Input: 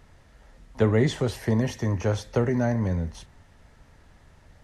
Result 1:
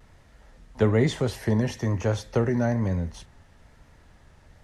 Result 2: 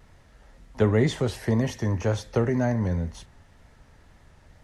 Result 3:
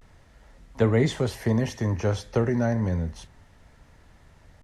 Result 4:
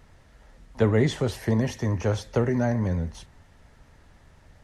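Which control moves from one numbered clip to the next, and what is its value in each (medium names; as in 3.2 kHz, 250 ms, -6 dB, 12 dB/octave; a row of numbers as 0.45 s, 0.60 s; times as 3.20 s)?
vibrato, rate: 1.1 Hz, 2 Hz, 0.31 Hz, 9.9 Hz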